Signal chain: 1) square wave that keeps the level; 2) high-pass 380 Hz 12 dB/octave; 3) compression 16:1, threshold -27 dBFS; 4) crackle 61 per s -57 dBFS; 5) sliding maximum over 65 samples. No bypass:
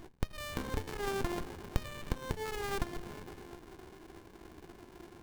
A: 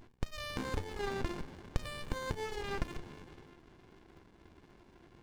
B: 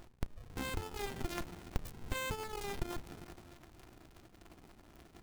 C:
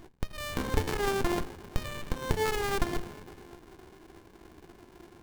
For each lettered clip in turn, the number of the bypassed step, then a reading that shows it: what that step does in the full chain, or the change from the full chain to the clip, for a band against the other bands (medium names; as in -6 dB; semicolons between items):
1, distortion -5 dB; 2, 8 kHz band +3.0 dB; 3, mean gain reduction 3.5 dB